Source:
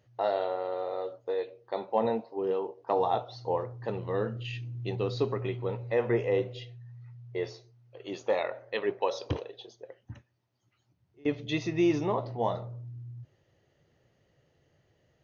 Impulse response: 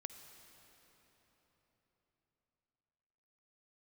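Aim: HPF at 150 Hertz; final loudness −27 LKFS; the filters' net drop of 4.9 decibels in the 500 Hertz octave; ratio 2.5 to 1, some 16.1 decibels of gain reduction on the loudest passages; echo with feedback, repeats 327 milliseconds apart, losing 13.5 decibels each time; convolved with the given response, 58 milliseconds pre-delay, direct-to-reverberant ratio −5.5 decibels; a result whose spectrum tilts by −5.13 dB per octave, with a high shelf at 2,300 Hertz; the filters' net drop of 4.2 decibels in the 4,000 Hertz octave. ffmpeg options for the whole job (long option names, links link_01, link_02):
-filter_complex "[0:a]highpass=150,equalizer=frequency=500:width_type=o:gain=-6,highshelf=frequency=2300:gain=3,equalizer=frequency=4000:width_type=o:gain=-8,acompressor=threshold=-50dB:ratio=2.5,aecho=1:1:327|654:0.211|0.0444,asplit=2[link_01][link_02];[1:a]atrim=start_sample=2205,adelay=58[link_03];[link_02][link_03]afir=irnorm=-1:irlink=0,volume=9dB[link_04];[link_01][link_04]amix=inputs=2:normalize=0,volume=15.5dB"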